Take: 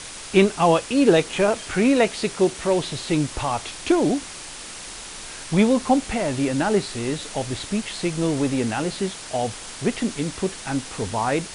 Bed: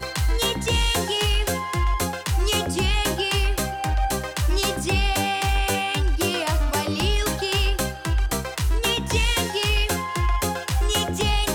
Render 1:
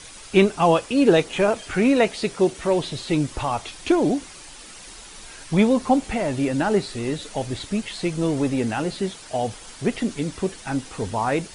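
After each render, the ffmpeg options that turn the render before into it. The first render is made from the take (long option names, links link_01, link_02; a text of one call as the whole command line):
ffmpeg -i in.wav -af "afftdn=noise_reduction=8:noise_floor=-37" out.wav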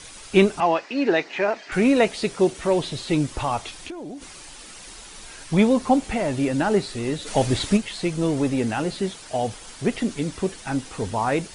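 ffmpeg -i in.wav -filter_complex "[0:a]asettb=1/sr,asplit=3[link_01][link_02][link_03];[link_01]atrim=end=0.604[link_04];[link_02]atrim=start=0.6:end=1.72,asetpts=PTS-STARTPTS,afade=type=in:duration=0.004:curve=qsin,afade=type=out:start_time=1.116:duration=0.004:curve=qsin,highpass=340,equalizer=frequency=490:width_type=q:width=4:gain=-8,equalizer=frequency=1200:width_type=q:width=4:gain=-4,equalizer=frequency=1900:width_type=q:width=4:gain=6,equalizer=frequency=3300:width_type=q:width=4:gain=-9,lowpass=frequency=5100:width=0.5412,lowpass=frequency=5100:width=1.3066[link_05];[link_03]atrim=start=1.716[link_06];[link_04][link_05]acrossfade=duration=0.004:curve1=hsin:curve2=qsin[link_07];[link_07][link_06]acrossfade=duration=0.004:curve1=qsin:curve2=hsin,asplit=3[link_08][link_09][link_10];[link_08]afade=type=out:start_time=3.71:duration=0.02[link_11];[link_09]acompressor=threshold=-33dB:ratio=6:attack=3.2:release=140:knee=1:detection=peak,afade=type=in:start_time=3.71:duration=0.02,afade=type=out:start_time=4.21:duration=0.02[link_12];[link_10]afade=type=in:start_time=4.21:duration=0.02[link_13];[link_11][link_12][link_13]amix=inputs=3:normalize=0,asplit=3[link_14][link_15][link_16];[link_14]afade=type=out:start_time=7.26:duration=0.02[link_17];[link_15]acontrast=82,afade=type=in:start_time=7.26:duration=0.02,afade=type=out:start_time=7.76:duration=0.02[link_18];[link_16]afade=type=in:start_time=7.76:duration=0.02[link_19];[link_17][link_18][link_19]amix=inputs=3:normalize=0" out.wav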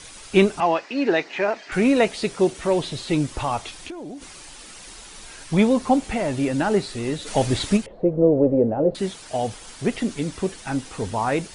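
ffmpeg -i in.wav -filter_complex "[0:a]asettb=1/sr,asplit=3[link_01][link_02][link_03];[link_01]atrim=end=7.864[link_04];[link_02]atrim=start=7.86:end=8.95,asetpts=PTS-STARTPTS,afade=type=in:duration=0.004:curve=qsin,afade=type=out:start_time=1.086:duration=0.004:curve=qsin,lowpass=frequency=540:width_type=q:width=4.6[link_05];[link_03]atrim=start=8.946[link_06];[link_04][link_05]acrossfade=duration=0.004:curve1=hsin:curve2=qsin[link_07];[link_07][link_06]acrossfade=duration=0.004:curve1=qsin:curve2=hsin" out.wav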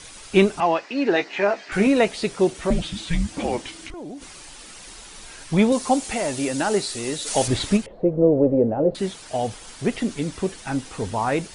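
ffmpeg -i in.wav -filter_complex "[0:a]asettb=1/sr,asplit=3[link_01][link_02][link_03];[link_01]atrim=end=1.144[link_04];[link_02]atrim=start=1.14:end=1.87,asetpts=PTS-STARTPTS,afade=type=in:duration=0.004:curve=qsin,afade=type=out:start_time=0.726:duration=0.004:curve=qsin,asplit=2[link_05][link_06];[link_06]adelay=15,volume=-5.5dB[link_07];[link_05][link_07]amix=inputs=2:normalize=0,atrim=end_sample=32193[link_08];[link_03]atrim=start=1.866[link_09];[link_04][link_08]acrossfade=duration=0.004:curve1=hsin:curve2=qsin[link_10];[link_10][link_09]acrossfade=duration=0.004:curve1=qsin:curve2=hsin,asettb=1/sr,asplit=3[link_11][link_12][link_13];[link_11]atrim=end=2.704[link_14];[link_12]atrim=start=2.7:end=3.94,asetpts=PTS-STARTPTS,afade=type=in:duration=0.004:curve=qsin,afade=type=out:start_time=1.236:duration=0.004:curve=qsin,afreqshift=-340[link_15];[link_13]atrim=start=3.936[link_16];[link_14][link_15]acrossfade=duration=0.004:curve1=hsin:curve2=qsin[link_17];[link_17][link_16]acrossfade=duration=0.004:curve1=qsin:curve2=hsin,asettb=1/sr,asplit=3[link_18][link_19][link_20];[link_18]atrim=end=5.724[link_21];[link_19]atrim=start=5.72:end=7.48,asetpts=PTS-STARTPTS,afade=type=in:duration=0.004:curve=qsin,afade=type=out:start_time=1.756:duration=0.004:curve=qsin,bass=frequency=250:gain=-7,treble=frequency=4000:gain=10[link_22];[link_20]atrim=start=7.476[link_23];[link_21][link_22]acrossfade=duration=0.004:curve1=hsin:curve2=qsin[link_24];[link_24][link_23]acrossfade=duration=0.004:curve1=qsin:curve2=hsin" out.wav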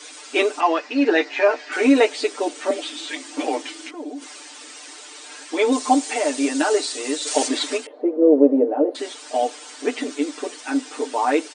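ffmpeg -i in.wav -af "afftfilt=real='re*between(b*sr/4096,240,9400)':imag='im*between(b*sr/4096,240,9400)':win_size=4096:overlap=0.75,aecho=1:1:6.7:0.95" out.wav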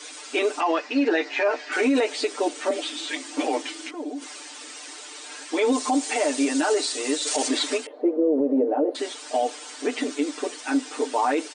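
ffmpeg -i in.wav -af "alimiter=limit=-13.5dB:level=0:latency=1:release=52" out.wav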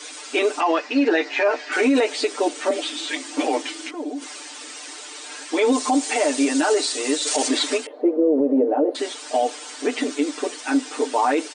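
ffmpeg -i in.wav -af "volume=3dB" out.wav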